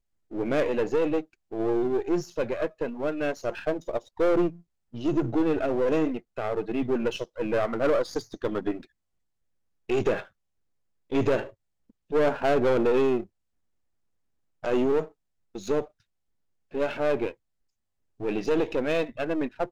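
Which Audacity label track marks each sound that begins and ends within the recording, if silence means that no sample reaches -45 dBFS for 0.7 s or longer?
9.890000	10.270000	sound
11.100000	13.260000	sound
14.630000	15.880000	sound
16.720000	17.340000	sound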